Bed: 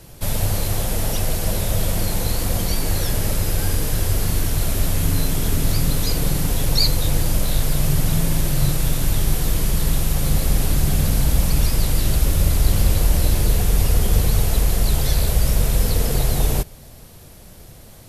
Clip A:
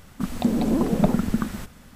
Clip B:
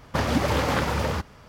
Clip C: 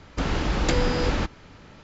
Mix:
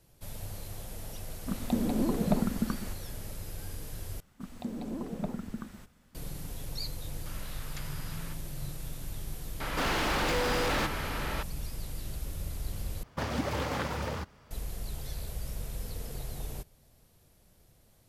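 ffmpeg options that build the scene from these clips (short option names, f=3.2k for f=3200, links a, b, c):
-filter_complex "[1:a]asplit=2[a][b];[3:a]asplit=2[c][d];[0:a]volume=-20dB[e];[c]highpass=f=980:w=0.5412,highpass=f=980:w=1.3066[f];[d]asplit=2[g][h];[h]highpass=f=720:p=1,volume=38dB,asoftclip=type=tanh:threshold=-10dB[i];[g][i]amix=inputs=2:normalize=0,lowpass=f=3.1k:p=1,volume=-6dB[j];[2:a]highshelf=f=12k:g=3[k];[e]asplit=3[l][m][n];[l]atrim=end=4.204[o];[b]atrim=end=1.95,asetpts=PTS-STARTPTS,volume=-15.5dB[p];[m]atrim=start=6.146:end=13.034[q];[k]atrim=end=1.48,asetpts=PTS-STARTPTS,volume=-9dB[r];[n]atrim=start=14.506[s];[a]atrim=end=1.95,asetpts=PTS-STARTPTS,volume=-7.5dB,afade=t=in:d=0.004:c=hsin,afade=t=out:st=1.946:d=0.004:c=hsin,adelay=1280[t];[f]atrim=end=1.83,asetpts=PTS-STARTPTS,volume=-17.5dB,afade=t=in:d=0.004:c=hsin,afade=t=out:st=1.826:d=0.004:c=hsin,adelay=7080[u];[j]atrim=end=1.83,asetpts=PTS-STARTPTS,volume=-12.5dB,afade=t=in:d=0.004:c=hsin,afade=t=out:st=1.826:d=0.004:c=hsin,adelay=9600[v];[o][p]acrossfade=d=0.004:c1=hsin:c2=hsin[w];[w][q]acrossfade=d=0.004:c1=hsin:c2=hsin[x];[x][r]acrossfade=d=0.004:c1=hsin:c2=hsin[y];[y][s]acrossfade=d=0.004:c1=hsin:c2=hsin[z];[z][t][u][v]amix=inputs=4:normalize=0"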